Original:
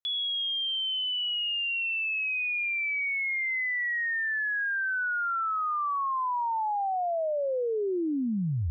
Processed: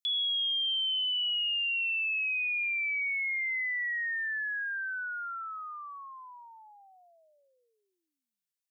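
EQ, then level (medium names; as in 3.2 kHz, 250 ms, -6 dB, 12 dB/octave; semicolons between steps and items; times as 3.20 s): high-pass 1.5 kHz 24 dB/octave; treble shelf 2.4 kHz +10.5 dB; -6.5 dB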